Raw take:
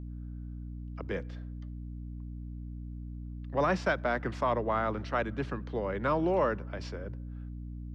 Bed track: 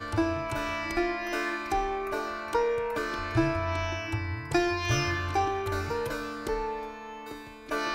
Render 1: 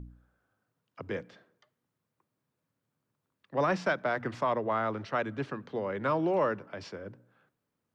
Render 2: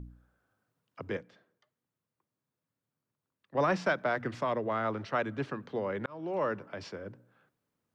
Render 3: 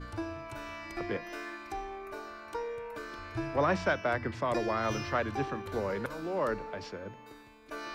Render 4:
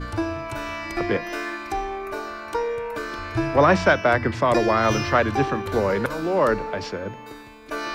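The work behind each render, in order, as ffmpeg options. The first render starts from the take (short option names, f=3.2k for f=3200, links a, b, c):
-af "bandreject=f=60:t=h:w=4,bandreject=f=120:t=h:w=4,bandreject=f=180:t=h:w=4,bandreject=f=240:t=h:w=4,bandreject=f=300:t=h:w=4"
-filter_complex "[0:a]asettb=1/sr,asplit=3[a][b][c];[a]atrim=end=4.164[d];[b]atrim=start=4.16:end=4.85,asetpts=PTS-STARTPTS,afade=t=in:d=0.004:c=qsin,afade=t=out:st=0.686:d=0.004:c=qsin,equalizer=f=920:w=1.5:g=-4.5[e];[c]atrim=start=4.846[f];[d][e]acrossfade=d=0.004:c1=hsin:c2=qsin[g];[g][f]acrossfade=d=0.004:c1=qsin:c2=hsin,asplit=4[h][i][j][k];[h]atrim=end=1.172[l];[i]atrim=start=1.168:end=3.552,asetpts=PTS-STARTPTS,volume=-6dB[m];[j]atrim=start=3.548:end=6.06,asetpts=PTS-STARTPTS,afade=t=out:st=2.508:d=0.004:c=hsin[n];[k]atrim=start=6.06,asetpts=PTS-STARTPTS,afade=t=in:d=0.54[o];[l][m]acrossfade=d=0.004:c1=hsin:c2=hsin[p];[n][o]concat=n=2:v=0:a=1[q];[p][q]acrossfade=d=0.004:c1=hsin:c2=hsin"
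-filter_complex "[1:a]volume=-10.5dB[a];[0:a][a]amix=inputs=2:normalize=0"
-af "volume=11.5dB"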